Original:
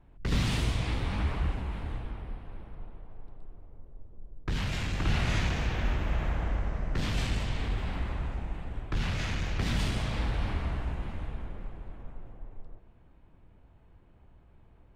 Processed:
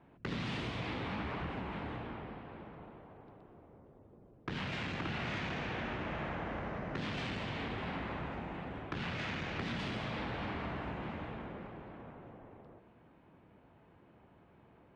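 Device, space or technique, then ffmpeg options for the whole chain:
AM radio: -af "highpass=170,lowpass=3300,acompressor=threshold=-39dB:ratio=4,asoftclip=type=tanh:threshold=-32dB,volume=4dB"

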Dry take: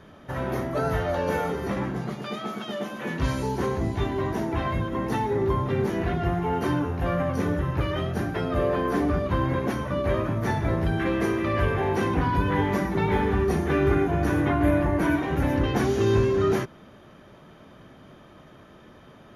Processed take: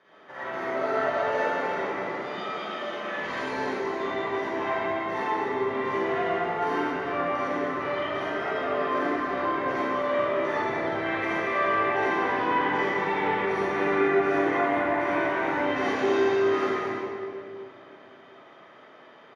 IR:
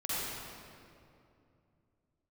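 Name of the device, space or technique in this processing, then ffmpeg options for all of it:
station announcement: -filter_complex "[0:a]highpass=470,lowpass=4600,equalizer=frequency=2000:width_type=o:width=0.2:gain=7,aecho=1:1:204.1|244.9:0.251|0.355[link_01];[1:a]atrim=start_sample=2205[link_02];[link_01][link_02]afir=irnorm=-1:irlink=0,asettb=1/sr,asplit=3[link_03][link_04][link_05];[link_03]atrim=end=6.434[link_06];[link_04]atrim=start=6.43:end=6.92,asetpts=PTS-STARTPTS,afade=type=in:duration=0.004:curve=qsin,afade=type=out:start_time=0.486:duration=0.004:curve=qsin,highshelf=frequency=10000:gain=7.5[link_07];[link_05]atrim=start=6.916[link_08];[link_06][link_07]acrossfade=duration=0.004:curve1=hsin:curve2=qsin[link_09];[link_09][link_08]acrossfade=duration=0.004:curve1=qsin:curve2=hsin,volume=-4.5dB"

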